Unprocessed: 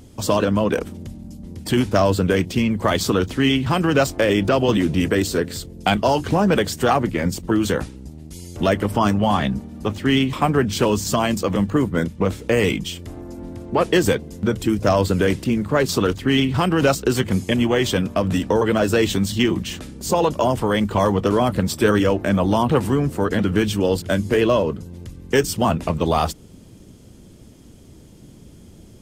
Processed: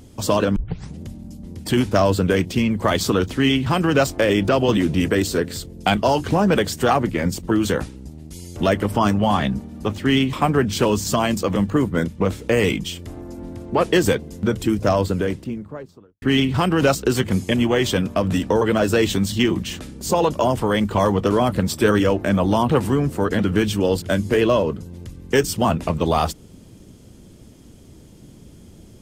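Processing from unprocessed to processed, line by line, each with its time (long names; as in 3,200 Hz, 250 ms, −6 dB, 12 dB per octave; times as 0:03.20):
0:00.56: tape start 0.46 s
0:14.60–0:16.22: fade out and dull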